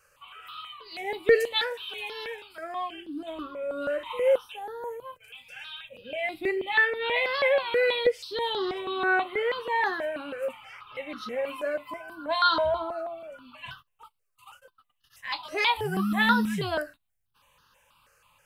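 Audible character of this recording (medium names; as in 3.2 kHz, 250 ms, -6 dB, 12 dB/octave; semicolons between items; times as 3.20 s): notches that jump at a steady rate 6.2 Hz 960–2300 Hz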